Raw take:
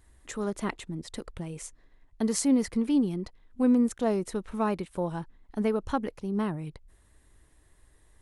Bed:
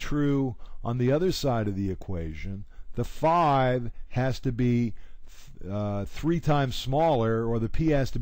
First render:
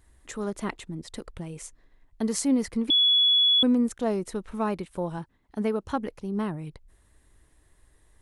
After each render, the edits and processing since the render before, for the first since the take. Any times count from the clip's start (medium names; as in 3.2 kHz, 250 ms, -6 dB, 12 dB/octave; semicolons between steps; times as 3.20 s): 2.90–3.63 s: bleep 3.39 kHz -17 dBFS; 5.18–5.96 s: high-pass 56 Hz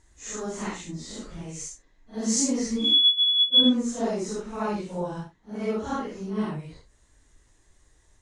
phase randomisation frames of 200 ms; resonant low-pass 6.6 kHz, resonance Q 3.8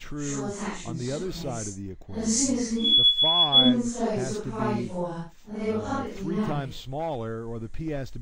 add bed -7.5 dB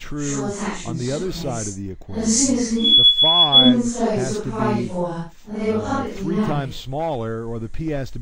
trim +6.5 dB; peak limiter -2 dBFS, peak gain reduction 1 dB